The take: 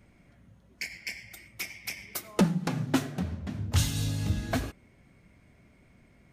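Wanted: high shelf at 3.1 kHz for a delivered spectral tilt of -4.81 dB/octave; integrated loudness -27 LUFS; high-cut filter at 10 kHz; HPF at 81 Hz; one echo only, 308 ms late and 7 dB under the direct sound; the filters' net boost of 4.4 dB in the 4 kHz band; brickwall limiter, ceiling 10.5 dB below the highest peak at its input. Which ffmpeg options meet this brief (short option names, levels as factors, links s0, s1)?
-af "highpass=81,lowpass=10000,highshelf=f=3100:g=-4.5,equalizer=f=4000:t=o:g=9,alimiter=limit=0.0794:level=0:latency=1,aecho=1:1:308:0.447,volume=2.24"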